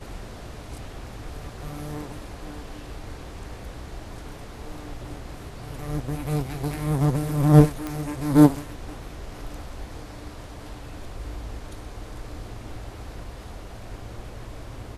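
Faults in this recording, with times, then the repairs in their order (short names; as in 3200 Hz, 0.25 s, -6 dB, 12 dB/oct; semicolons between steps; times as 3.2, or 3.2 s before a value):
7.87 pop -16 dBFS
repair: de-click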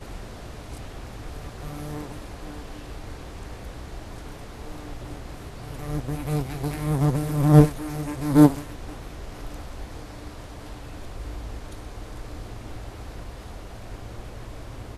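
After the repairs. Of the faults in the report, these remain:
none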